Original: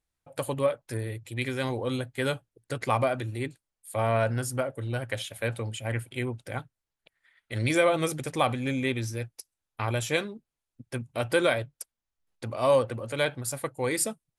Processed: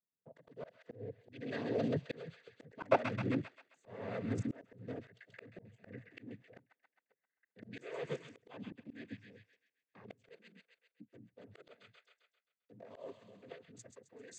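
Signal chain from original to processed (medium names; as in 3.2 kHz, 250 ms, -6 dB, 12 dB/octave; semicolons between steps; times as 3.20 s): local Wiener filter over 41 samples; Doppler pass-by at 3.06 s, 15 m/s, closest 8.3 m; small resonant body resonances 220/440/1800 Hz, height 14 dB, ringing for 70 ms; level held to a coarse grid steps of 22 dB; noise-vocoded speech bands 16; bass shelf 450 Hz -7 dB; feedback echo behind a high-pass 132 ms, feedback 42%, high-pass 1.6 kHz, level -8 dB; slow attack 574 ms; trim +16 dB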